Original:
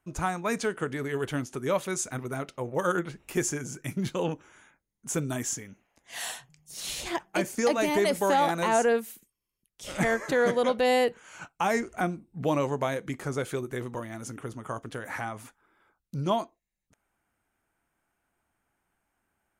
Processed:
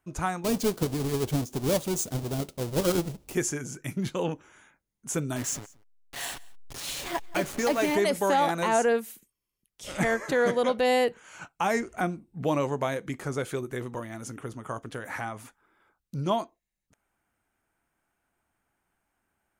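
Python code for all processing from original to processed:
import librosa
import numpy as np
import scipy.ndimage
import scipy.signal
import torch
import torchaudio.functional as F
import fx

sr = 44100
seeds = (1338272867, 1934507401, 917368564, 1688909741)

y = fx.chain(x, sr, fx.halfwave_hold(),
    fx.peak_eq(hz=1700.0, db=-12.0, octaves=1.9), at=(0.44, 3.35))
y = fx.chain(y, sr, fx.delta_hold(step_db=-34.0),
    fx.comb(ms=7.2, depth=0.37),
    fx.echo_single(ms=176, db=-24.0), at=(5.36, 7.95))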